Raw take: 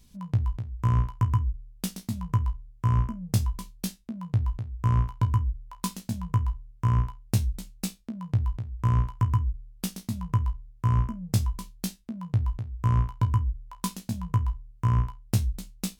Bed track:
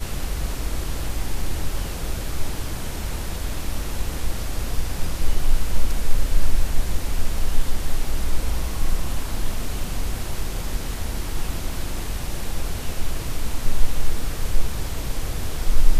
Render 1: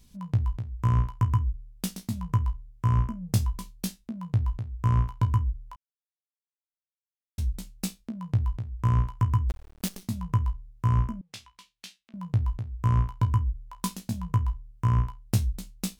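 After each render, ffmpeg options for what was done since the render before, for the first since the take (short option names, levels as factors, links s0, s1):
-filter_complex "[0:a]asettb=1/sr,asplit=3[s0][s1][s2];[s0]atrim=end=9.494[s3];[s1]atrim=start=9.49:end=10.02,asetpts=PTS-STARTPTS,afade=t=in:d=0.004:c=qsin,afade=t=out:st=0.526:d=0.004:c=qsin,acrusher=bits=6:dc=4:mix=0:aa=0.000001[s4];[s2]atrim=start=10.016[s5];[s3][s4]acrossfade=d=0.004:c1=hsin:c2=qsin[s6];[s6][s5]acrossfade=d=0.004:c1=qsin:c2=hsin,asettb=1/sr,asplit=3[s7][s8][s9];[s7]atrim=end=11.214[s10];[s8]atrim=start=11.21:end=12.14,asetpts=PTS-STARTPTS,afade=t=in:d=0.004:c=qsin,afade=t=out:st=0.926:d=0.004:c=qsin,bandpass=f=2800:t=q:w=1.4[s11];[s9]atrim=start=12.136[s12];[s10][s11]acrossfade=d=0.004:c1=hsin:c2=qsin[s13];[s13][s12]acrossfade=d=0.004:c1=qsin:c2=hsin,asplit=3[s14][s15][s16];[s14]atrim=end=5.76,asetpts=PTS-STARTPTS,afade=t=out:st=5.756:d=0.004:c=hsin[s17];[s15]atrim=start=5.76:end=7.38,asetpts=PTS-STARTPTS,volume=0[s18];[s16]atrim=start=7.38,asetpts=PTS-STARTPTS,afade=t=in:d=0.004:c=hsin[s19];[s17][s18][s19]concat=n=3:v=0:a=1"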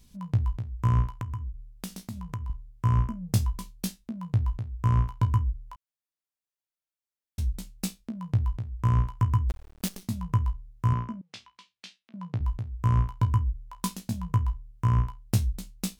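-filter_complex "[0:a]asettb=1/sr,asplit=3[s0][s1][s2];[s0]atrim=end=1.104[s3];[s1]atrim=start=1.1:end=2.5,asetpts=PTS-STARTPTS,afade=t=in:d=0.004:c=qsin,afade=t=out:st=1.396:d=0.004:c=qsin,acompressor=threshold=0.0178:ratio=2.5:attack=3.2:release=140:knee=1:detection=peak[s4];[s2]atrim=start=2.496[s5];[s3][s4]acrossfade=d=0.004:c1=hsin:c2=qsin[s6];[s6][s5]acrossfade=d=0.004:c1=qsin:c2=hsin,asettb=1/sr,asplit=3[s7][s8][s9];[s7]atrim=end=10.934[s10];[s8]atrim=start=10.93:end=12.41,asetpts=PTS-STARTPTS,afade=t=in:d=0.004:c=qsin,afade=t=out:st=1.476:d=0.004:c=qsin,highpass=150,lowpass=5400[s11];[s9]atrim=start=12.406[s12];[s10][s11]acrossfade=d=0.004:c1=hsin:c2=qsin[s13];[s13][s12]acrossfade=d=0.004:c1=qsin:c2=hsin"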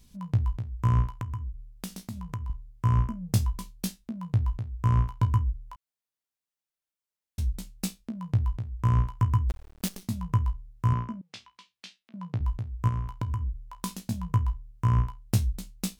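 -filter_complex "[0:a]asettb=1/sr,asplit=3[s0][s1][s2];[s0]atrim=end=12.884[s3];[s1]atrim=start=12.88:end=13.97,asetpts=PTS-STARTPTS,afade=t=in:d=0.004:c=qsin,afade=t=out:st=1.086:d=0.004:c=qsin,acompressor=threshold=0.0501:ratio=6:attack=3.2:release=140:knee=1:detection=peak[s4];[s2]atrim=start=13.966[s5];[s3][s4]acrossfade=d=0.004:c1=hsin:c2=qsin[s6];[s6][s5]acrossfade=d=0.004:c1=qsin:c2=hsin"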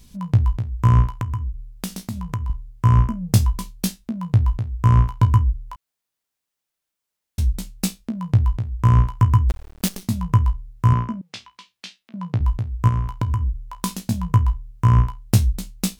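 -af "volume=2.66"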